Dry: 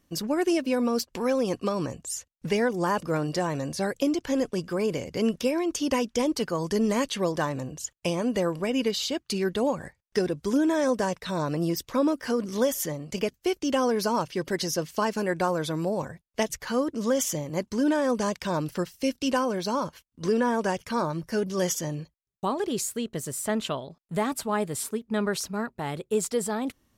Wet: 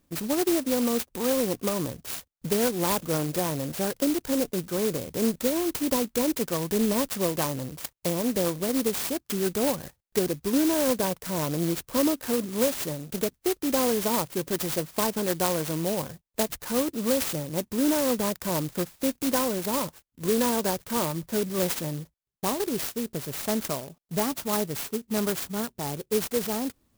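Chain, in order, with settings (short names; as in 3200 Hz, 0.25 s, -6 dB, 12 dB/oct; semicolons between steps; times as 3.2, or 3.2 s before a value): clock jitter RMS 0.13 ms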